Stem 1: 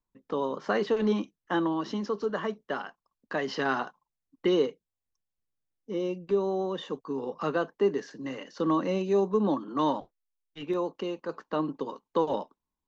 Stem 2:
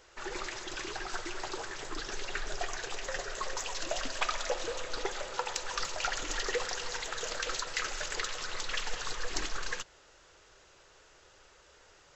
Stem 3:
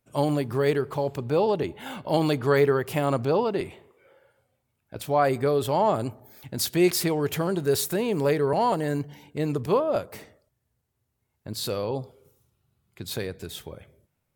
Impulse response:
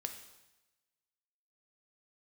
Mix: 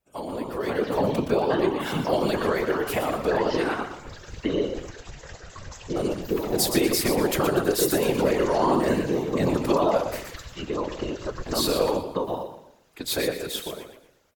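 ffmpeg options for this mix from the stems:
-filter_complex "[0:a]volume=0dB,asplit=2[a][b];[b]volume=-13dB[c];[1:a]adelay=2150,volume=-12.5dB,asplit=2[d][e];[e]volume=-13dB[f];[2:a]highpass=300,acompressor=threshold=-26dB:ratio=12,volume=0dB,asplit=3[g][h][i];[g]atrim=end=4.91,asetpts=PTS-STARTPTS,afade=t=out:st=4.906:d=0.004:c=hsin[j];[h]atrim=start=4.91:end=5.96,asetpts=PTS-STARTPTS,volume=0[k];[i]atrim=start=5.96,asetpts=PTS-STARTPTS,afade=t=in:d=0.004:c=hsin[l];[j][k][l]concat=n=3:v=0:a=1,asplit=3[m][n][o];[n]volume=-7dB[p];[o]volume=-5dB[q];[a][d]amix=inputs=2:normalize=0,acompressor=threshold=-32dB:ratio=2,volume=0dB[r];[3:a]atrim=start_sample=2205[s];[f][p]amix=inputs=2:normalize=0[t];[t][s]afir=irnorm=-1:irlink=0[u];[c][q]amix=inputs=2:normalize=0,aecho=0:1:120|240|360|480|600:1|0.34|0.116|0.0393|0.0134[v];[m][r][u][v]amix=inputs=4:normalize=0,lowshelf=f=150:g=6.5,dynaudnorm=f=170:g=9:m=10.5dB,afftfilt=real='hypot(re,im)*cos(2*PI*random(0))':imag='hypot(re,im)*sin(2*PI*random(1))':win_size=512:overlap=0.75"

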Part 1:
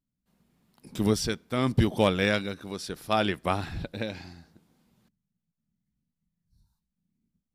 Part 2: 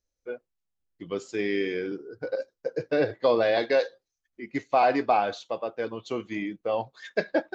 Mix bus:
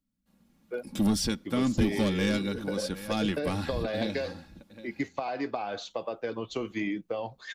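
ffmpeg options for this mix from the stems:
-filter_complex "[0:a]equalizer=f=190:t=o:w=0.71:g=5,asoftclip=type=tanh:threshold=-18dB,aecho=1:1:3.6:0.52,volume=0.5dB,asplit=2[a][b];[b]volume=-18.5dB[c];[1:a]acompressor=threshold=-28dB:ratio=6,adelay=450,volume=2.5dB[d];[c]aecho=0:1:762:1[e];[a][d][e]amix=inputs=3:normalize=0,acrossover=split=270|3000[f][g][h];[g]acompressor=threshold=-30dB:ratio=6[i];[f][i][h]amix=inputs=3:normalize=0"

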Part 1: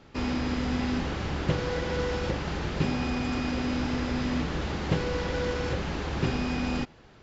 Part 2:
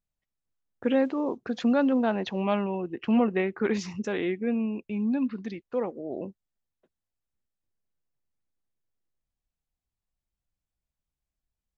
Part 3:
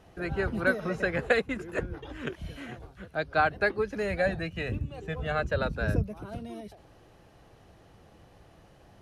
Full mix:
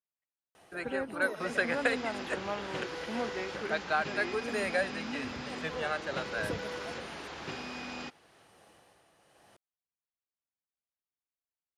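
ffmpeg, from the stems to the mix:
-filter_complex "[0:a]dynaudnorm=f=340:g=3:m=5dB,adelay=1250,volume=-10dB[a];[1:a]lowpass=2.5k,volume=-6dB[b];[2:a]equalizer=f=8.9k:t=o:w=0.32:g=10,tremolo=f=0.99:d=0.53,adelay=550,volume=2dB[c];[a][b][c]amix=inputs=3:normalize=0,highpass=f=730:p=1"

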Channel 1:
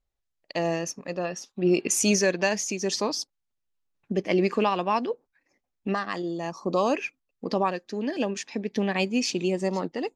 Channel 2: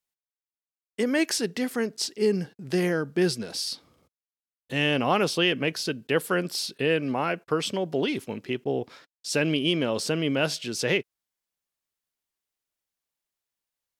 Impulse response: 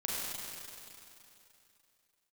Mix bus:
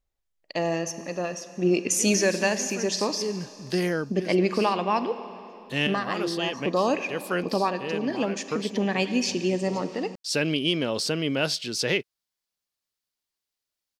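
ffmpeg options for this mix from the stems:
-filter_complex "[0:a]volume=-1dB,asplit=3[a][b][c];[b]volume=-14dB[d];[1:a]equalizer=f=4.6k:t=o:w=0.75:g=6.5,adelay=1000,volume=-1dB[e];[c]apad=whole_len=661109[f];[e][f]sidechaincompress=threshold=-33dB:ratio=12:attack=6.5:release=437[g];[2:a]atrim=start_sample=2205[h];[d][h]afir=irnorm=-1:irlink=0[i];[a][g][i]amix=inputs=3:normalize=0"

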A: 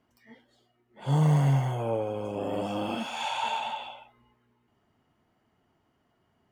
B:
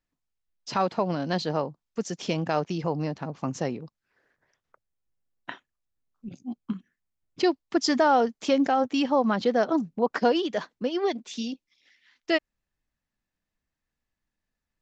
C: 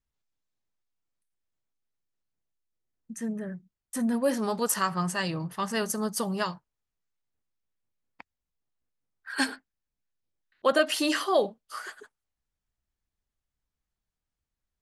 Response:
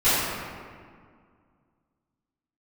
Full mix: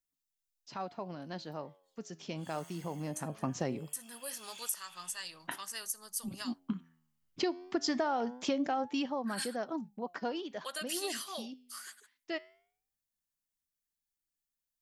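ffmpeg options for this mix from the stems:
-filter_complex "[0:a]highpass=1.3k,adelay=1350,volume=-7.5dB[a];[1:a]equalizer=f=470:w=6.7:g=-4,flanger=delay=3.2:depth=9.9:regen=89:speed=0.21:shape=triangular,dynaudnorm=f=360:g=13:m=5dB,volume=-3dB,afade=t=in:st=2.96:d=0.49:silence=0.421697,afade=t=out:st=8.8:d=0.35:silence=0.316228[b];[2:a]volume=1.5dB[c];[a][c]amix=inputs=2:normalize=0,aderivative,acompressor=threshold=-39dB:ratio=2,volume=0dB[d];[b][d]amix=inputs=2:normalize=0,acompressor=threshold=-28dB:ratio=12"

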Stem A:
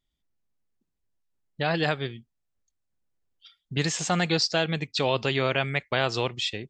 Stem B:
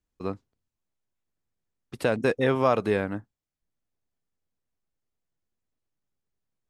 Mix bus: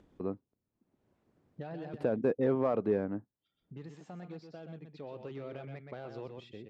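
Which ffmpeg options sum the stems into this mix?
-filter_complex "[0:a]asoftclip=type=tanh:threshold=-19dB,volume=-2.5dB,afade=t=out:st=1.76:d=0.31:silence=0.298538,afade=t=in:st=4.95:d=0.57:silence=0.298538,asplit=2[a][b];[b]volume=-7.5dB[c];[1:a]asoftclip=type=hard:threshold=-15.5dB,volume=-3dB[d];[c]aecho=0:1:125:1[e];[a][d][e]amix=inputs=3:normalize=0,acompressor=mode=upward:threshold=-33dB:ratio=2.5,bandpass=f=290:t=q:w=0.68:csg=0"

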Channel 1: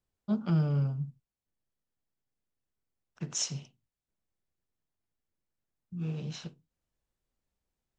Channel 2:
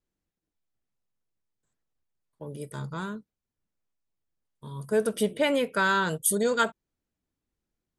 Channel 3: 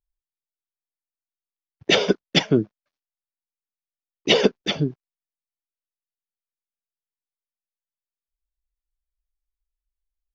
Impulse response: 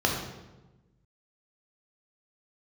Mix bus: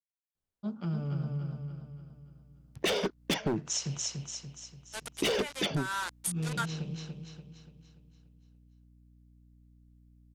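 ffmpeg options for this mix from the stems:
-filter_complex "[0:a]dynaudnorm=f=230:g=13:m=8.5dB,adelay=350,volume=-6dB,asplit=2[a][b];[b]volume=-4.5dB[c];[1:a]highpass=f=720:w=0.5412,highpass=f=720:w=1.3066,acrusher=bits=4:mix=0:aa=0.000001,lowpass=f=11k:w=0.5412,lowpass=f=11k:w=1.3066,volume=-5.5dB[d];[2:a]aeval=exprs='val(0)+0.001*(sin(2*PI*60*n/s)+sin(2*PI*2*60*n/s)/2+sin(2*PI*3*60*n/s)/3+sin(2*PI*4*60*n/s)/4+sin(2*PI*5*60*n/s)/5)':c=same,asoftclip=type=hard:threshold=-18.5dB,adelay=950,volume=2dB[e];[c]aecho=0:1:289|578|867|1156|1445|1734|2023:1|0.47|0.221|0.104|0.0488|0.0229|0.0108[f];[a][d][e][f]amix=inputs=4:normalize=0,acompressor=threshold=-28dB:ratio=6"

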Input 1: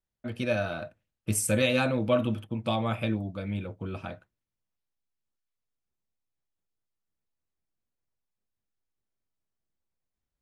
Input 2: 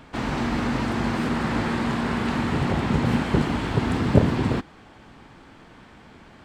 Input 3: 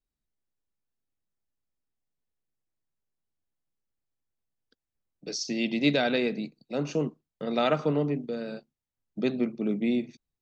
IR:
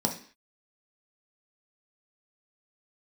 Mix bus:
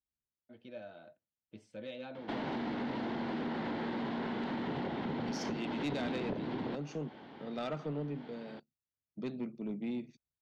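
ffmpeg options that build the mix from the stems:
-filter_complex "[0:a]adelay=250,volume=-17dB[a];[1:a]adelay=2150,volume=0dB[b];[2:a]highpass=86,lowshelf=f=120:g=12,volume=-12dB,asplit=2[c][d];[d]apad=whole_len=379088[e];[b][e]sidechaincompress=threshold=-39dB:ratio=8:attack=31:release=151[f];[a][f]amix=inputs=2:normalize=0,highpass=230,equalizer=f=1.2k:t=q:w=4:g=-10,equalizer=f=1.7k:t=q:w=4:g=-4,equalizer=f=2.5k:t=q:w=4:g=-8,lowpass=f=3.8k:w=0.5412,lowpass=f=3.8k:w=1.3066,acompressor=threshold=-32dB:ratio=6,volume=0dB[g];[c][g]amix=inputs=2:normalize=0,asoftclip=type=tanh:threshold=-29.5dB"

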